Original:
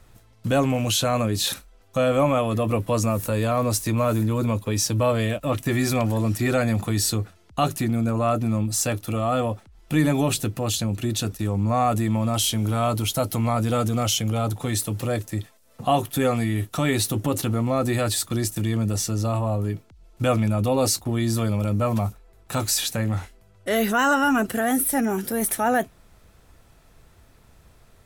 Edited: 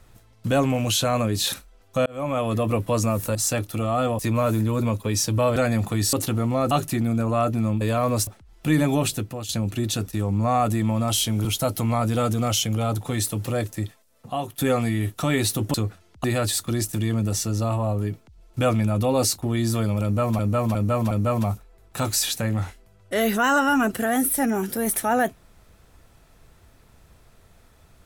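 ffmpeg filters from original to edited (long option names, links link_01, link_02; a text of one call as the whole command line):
ffmpeg -i in.wav -filter_complex "[0:a]asplit=17[link_01][link_02][link_03][link_04][link_05][link_06][link_07][link_08][link_09][link_10][link_11][link_12][link_13][link_14][link_15][link_16][link_17];[link_01]atrim=end=2.06,asetpts=PTS-STARTPTS,afade=type=out:start_time=2.056:duration=0.004:curve=hsin[link_18];[link_02]atrim=start=2.06:end=3.352,asetpts=PTS-STARTPTS,afade=type=in:duration=0.44[link_19];[link_03]atrim=start=8.688:end=9.532[link_20];[link_04]atrim=start=3.808:end=5.182[link_21];[link_05]atrim=start=6.518:end=7.092[link_22];[link_06]atrim=start=17.288:end=17.872[link_23];[link_07]atrim=start=7.588:end=8.692[link_24];[link_08]atrim=start=3.348:end=3.812[link_25];[link_09]atrim=start=9.528:end=10.75,asetpts=PTS-STARTPTS,afade=type=out:start_time=0.662:duration=0.56:curve=qsin:silence=0.237137[link_26];[link_10]atrim=start=10.75:end=12.712,asetpts=PTS-STARTPTS,afade=type=in:duration=0.004:curve=hsin:silence=0.237137[link_27];[link_11]atrim=start=12.998:end=16.13,asetpts=PTS-STARTPTS,afade=type=out:start_time=2.362:duration=0.77:curve=qua:silence=0.375837[link_28];[link_12]atrim=start=16.13:end=17.292,asetpts=PTS-STARTPTS,afade=type=in:duration=0.004:curve=hsin:silence=0.375837[link_29];[link_13]atrim=start=7.088:end=7.592[link_30];[link_14]atrim=start=17.868:end=22.022[link_31];[link_15]atrim=start=21.658:end=22.022[link_32];[link_16]atrim=start=21.658:end=22.022[link_33];[link_17]atrim=start=21.658[link_34];[link_18][link_19]concat=n=2:v=0:a=1[link_35];[link_35][link_20]acrossfade=duration=0.004:curve1=hsin:curve2=hsin[link_36];[link_36][link_21]acrossfade=duration=0.004:curve1=hsin:curve2=hsin[link_37];[link_37][link_22]acrossfade=duration=0.004:curve1=hsin:curve2=hsin[link_38];[link_38][link_23]acrossfade=duration=0.004:curve1=hsin:curve2=hsin[link_39];[link_39][link_24]acrossfade=duration=0.004:curve1=hsin:curve2=hsin[link_40];[link_40][link_25]acrossfade=duration=0.004:curve1=hsin:curve2=hsin[link_41];[link_26][link_27]concat=n=2:v=0:a=1[link_42];[link_41][link_42]acrossfade=duration=0.004:curve1=hsin:curve2=hsin[link_43];[link_28][link_29]concat=n=2:v=0:a=1[link_44];[link_43][link_44]acrossfade=duration=0.004:curve1=hsin:curve2=hsin[link_45];[link_45][link_30]acrossfade=duration=0.004:curve1=hsin:curve2=hsin[link_46];[link_46][link_31]acrossfade=duration=0.004:curve1=hsin:curve2=hsin[link_47];[link_47][link_32]acrossfade=duration=0.004:curve1=hsin:curve2=hsin[link_48];[link_48][link_33]acrossfade=duration=0.004:curve1=hsin:curve2=hsin[link_49];[link_49][link_34]acrossfade=duration=0.004:curve1=hsin:curve2=hsin" out.wav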